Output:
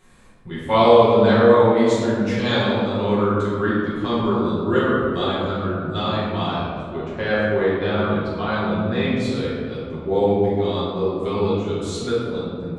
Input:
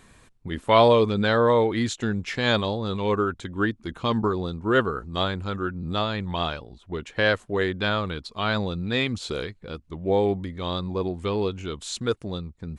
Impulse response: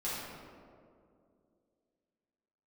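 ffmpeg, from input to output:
-filter_complex "[0:a]asettb=1/sr,asplit=3[s0][s1][s2];[s0]atrim=end=6.954[s3];[s1]atrim=start=6.95:end=9.2,asetpts=PTS-STARTPTS,afade=t=in:d=0.004:c=qsin,afade=t=out:st=2.246:d=0.004:c=qsin,aemphasis=mode=reproduction:type=75fm[s4];[s2]atrim=start=9.196[s5];[s3][s4]acrossfade=d=0.004:c1=hsin:c2=qsin[s6];[s6][s5]acrossfade=d=0.004:c1=qsin:c2=hsin[s7];[1:a]atrim=start_sample=2205[s8];[s7][s8]afir=irnorm=-1:irlink=0,volume=0.841"

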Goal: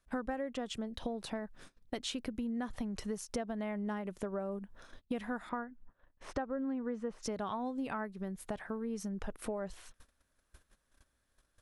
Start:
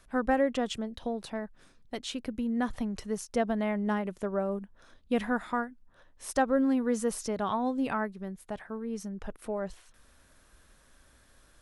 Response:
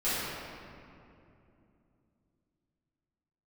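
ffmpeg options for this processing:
-filter_complex "[0:a]asettb=1/sr,asplit=3[s0][s1][s2];[s0]atrim=end=5.494[s3];[s1]atrim=start=5.49:end=7.23,asetpts=PTS-STARTPTS,afade=t=in:d=0.004:c=qsin,afade=t=out:st=1.736:d=0.004:c=qsin,lowpass=2200[s4];[s2]atrim=start=7.226[s5];[s3][s4]acrossfade=d=0.004:c1=hsin:c2=qsin[s6];[s6][s5]acrossfade=d=0.004:c1=qsin:c2=hsin,agate=range=0.0708:threshold=0.00178:ratio=16:detection=peak,acompressor=threshold=0.00891:ratio=6,volume=1.88"

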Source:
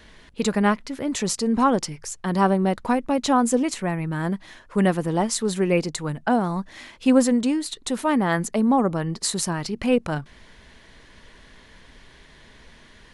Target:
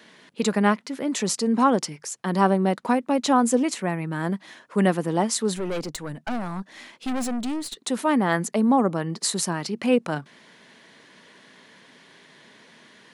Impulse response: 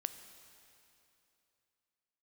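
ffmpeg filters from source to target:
-filter_complex "[0:a]highpass=f=160:w=0.5412,highpass=f=160:w=1.3066,asettb=1/sr,asplit=3[s0][s1][s2];[s0]atrim=end=5.564[s3];[s1]atrim=start=5.56:end=7.78,asetpts=PTS-STARTPTS,afade=t=in:d=0.004:c=qsin,afade=t=out:st=2.216:d=0.004:c=qsin,aeval=exprs='(tanh(17.8*val(0)+0.45)-tanh(0.45))/17.8':c=same[s4];[s2]atrim=start=7.776[s5];[s3][s4]acrossfade=d=0.004:c1=hsin:c2=qsin[s6];[s6][s5]acrossfade=d=0.004:c1=qsin:c2=hsin"

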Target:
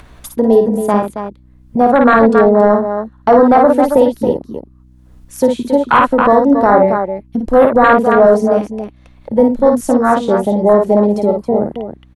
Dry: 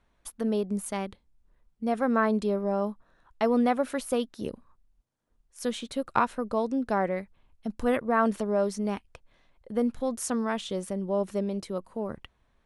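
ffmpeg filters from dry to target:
-filter_complex "[0:a]afwtdn=0.0316,acrossover=split=290|1900[s0][s1][s2];[s0]acompressor=threshold=0.0112:ratio=6[s3];[s3][s1][s2]amix=inputs=3:normalize=0,aecho=1:1:55.39|285.7:0.562|0.355,acompressor=mode=upward:threshold=0.00708:ratio=2.5,aeval=exprs='val(0)+0.000708*(sin(2*PI*60*n/s)+sin(2*PI*2*60*n/s)/2+sin(2*PI*3*60*n/s)/3+sin(2*PI*4*60*n/s)/4+sin(2*PI*5*60*n/s)/5)':c=same,apsyclip=11.2,asetrate=45938,aresample=44100,volume=0.841"

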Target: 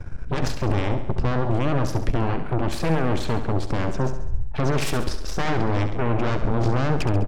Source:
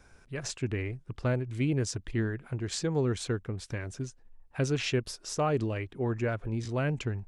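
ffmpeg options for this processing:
-filter_complex "[0:a]acrossover=split=5200[s0][s1];[s1]acompressor=threshold=0.00631:ratio=4:attack=1:release=60[s2];[s0][s2]amix=inputs=2:normalize=0,aemphasis=mode=reproduction:type=riaa,alimiter=level_in=1.19:limit=0.0631:level=0:latency=1:release=33,volume=0.841,aeval=exprs='0.0562*(cos(1*acos(clip(val(0)/0.0562,-1,1)))-cos(1*PI/2))+0.0224*(cos(3*acos(clip(val(0)/0.0562,-1,1)))-cos(3*PI/2))+0.0141*(cos(8*acos(clip(val(0)/0.0562,-1,1)))-cos(8*PI/2))':c=same,asplit=2[s3][s4];[s4]aecho=0:1:68|136|204|272|340|408:0.316|0.177|0.0992|0.0555|0.0311|0.0174[s5];[s3][s5]amix=inputs=2:normalize=0,volume=2.82"

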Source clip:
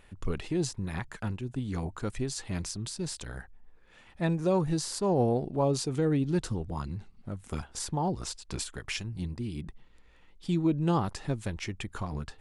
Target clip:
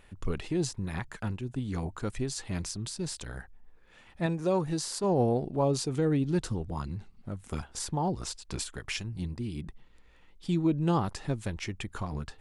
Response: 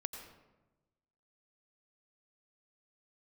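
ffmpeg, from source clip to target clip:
-filter_complex "[0:a]asettb=1/sr,asplit=3[s0][s1][s2];[s0]atrim=end=4.264[s3];[s1]atrim=start=4.26:end=5.04,asetpts=PTS-STARTPTS,afade=t=in:d=0.004:c=qsin,afade=t=out:st=0.776:d=0.004:c=qsin,lowshelf=f=140:g=-8[s4];[s2]atrim=start=5.036[s5];[s3][s4]acrossfade=d=0.004:c1=hsin:c2=qsin[s6];[s6][s5]acrossfade=d=0.004:c1=qsin:c2=hsin"

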